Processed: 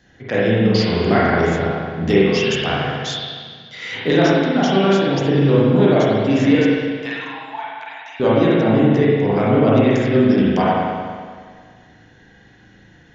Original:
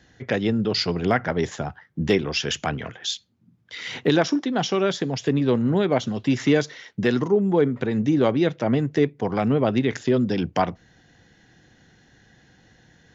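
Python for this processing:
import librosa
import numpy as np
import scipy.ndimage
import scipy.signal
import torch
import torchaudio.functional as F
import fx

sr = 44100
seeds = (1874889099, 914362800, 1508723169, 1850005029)

y = fx.cheby_ripple_highpass(x, sr, hz=650.0, ripple_db=6, at=(6.55, 8.2))
y = fx.rev_spring(y, sr, rt60_s=1.8, pass_ms=(36, 46), chirp_ms=60, drr_db=-7.5)
y = F.gain(torch.from_numpy(y), -1.0).numpy()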